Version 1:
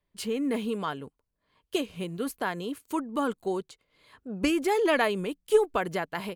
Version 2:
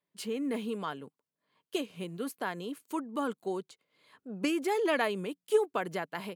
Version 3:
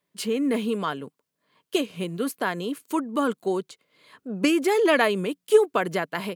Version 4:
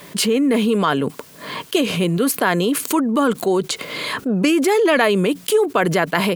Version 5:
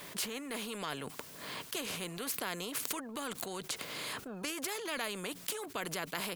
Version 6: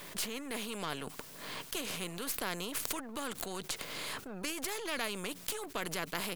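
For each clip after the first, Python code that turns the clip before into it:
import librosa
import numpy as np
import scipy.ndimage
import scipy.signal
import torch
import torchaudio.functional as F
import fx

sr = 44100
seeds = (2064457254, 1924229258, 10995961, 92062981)

y1 = scipy.signal.sosfilt(scipy.signal.butter(4, 140.0, 'highpass', fs=sr, output='sos'), x)
y1 = y1 * librosa.db_to_amplitude(-4.5)
y2 = fx.peak_eq(y1, sr, hz=830.0, db=-4.5, octaves=0.21)
y2 = y2 * librosa.db_to_amplitude(9.0)
y3 = fx.env_flatten(y2, sr, amount_pct=70)
y3 = y3 * librosa.db_to_amplitude(-1.0)
y4 = fx.spectral_comp(y3, sr, ratio=2.0)
y4 = y4 * librosa.db_to_amplitude(-9.0)
y5 = np.where(y4 < 0.0, 10.0 ** (-7.0 / 20.0) * y4, y4)
y5 = y5 * librosa.db_to_amplitude(2.5)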